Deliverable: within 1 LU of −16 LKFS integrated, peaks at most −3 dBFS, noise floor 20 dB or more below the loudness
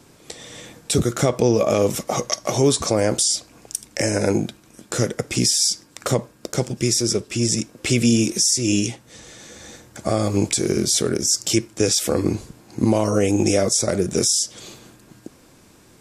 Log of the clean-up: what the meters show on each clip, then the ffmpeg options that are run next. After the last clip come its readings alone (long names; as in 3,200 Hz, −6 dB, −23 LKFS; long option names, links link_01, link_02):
integrated loudness −20.0 LKFS; sample peak −4.5 dBFS; target loudness −16.0 LKFS
→ -af "volume=4dB,alimiter=limit=-3dB:level=0:latency=1"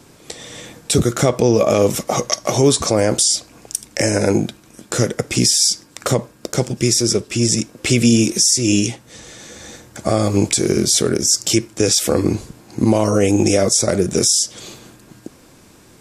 integrated loudness −16.5 LKFS; sample peak −3.0 dBFS; background noise floor −48 dBFS